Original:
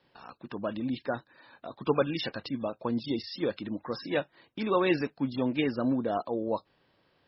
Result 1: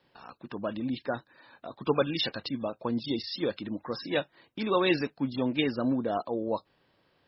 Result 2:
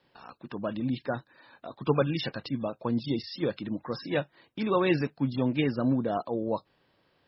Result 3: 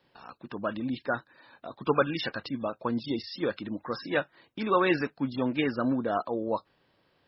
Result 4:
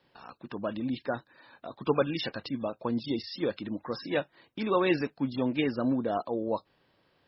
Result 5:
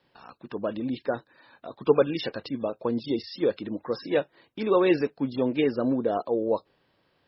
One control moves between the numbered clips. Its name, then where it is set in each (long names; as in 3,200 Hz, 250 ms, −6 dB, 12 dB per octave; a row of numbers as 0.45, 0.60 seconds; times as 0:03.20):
dynamic equaliser, frequency: 3,900, 140, 1,400, 10,000, 440 Hertz